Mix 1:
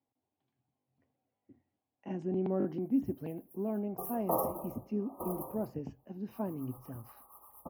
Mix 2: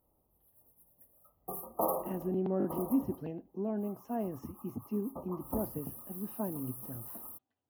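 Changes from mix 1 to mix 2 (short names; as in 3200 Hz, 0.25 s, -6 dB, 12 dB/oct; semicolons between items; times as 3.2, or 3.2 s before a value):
background: entry -2.50 s; master: add notch 2300 Hz, Q 7.7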